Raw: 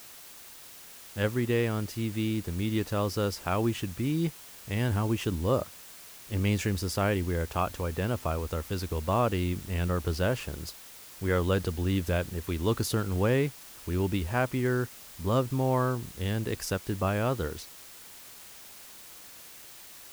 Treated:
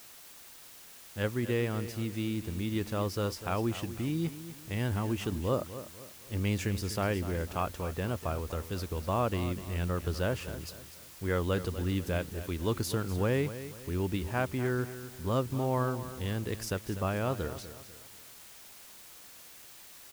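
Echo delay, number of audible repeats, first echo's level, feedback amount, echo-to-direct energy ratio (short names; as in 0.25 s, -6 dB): 0.247 s, 3, -13.0 dB, 37%, -12.5 dB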